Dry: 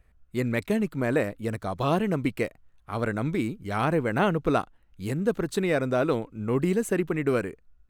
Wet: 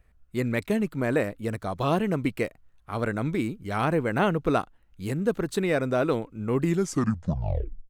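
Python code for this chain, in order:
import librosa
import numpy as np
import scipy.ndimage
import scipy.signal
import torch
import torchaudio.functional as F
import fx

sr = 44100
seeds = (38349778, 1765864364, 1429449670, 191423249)

y = fx.tape_stop_end(x, sr, length_s=1.29)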